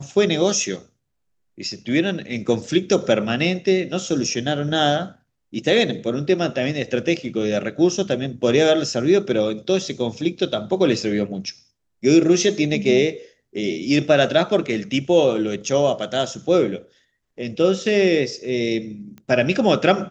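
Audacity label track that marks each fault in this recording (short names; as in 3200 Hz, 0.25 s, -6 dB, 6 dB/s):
19.180000	19.180000	pop -27 dBFS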